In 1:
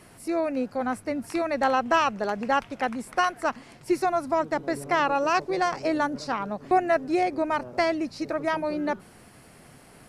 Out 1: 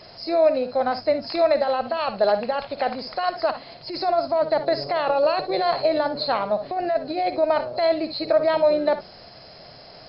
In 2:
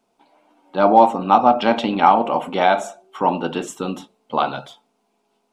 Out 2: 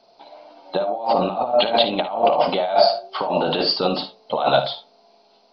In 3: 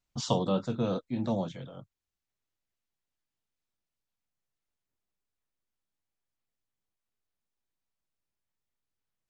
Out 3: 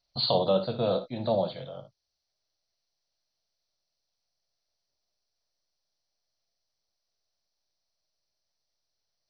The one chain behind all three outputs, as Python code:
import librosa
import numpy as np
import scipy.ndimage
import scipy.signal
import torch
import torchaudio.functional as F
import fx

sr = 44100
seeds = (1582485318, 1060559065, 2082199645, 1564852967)

p1 = fx.freq_compress(x, sr, knee_hz=4000.0, ratio=4.0)
p2 = fx.over_compress(p1, sr, threshold_db=-26.0, ratio=-1.0)
p3 = fx.graphic_eq_15(p2, sr, hz=(250, 630, 4000), db=(-5, 12, 10))
p4 = p3 + fx.room_early_taps(p3, sr, ms=(57, 73), db=(-12.0, -17.0), dry=0)
y = p4 * librosa.db_to_amplitude(-1.0)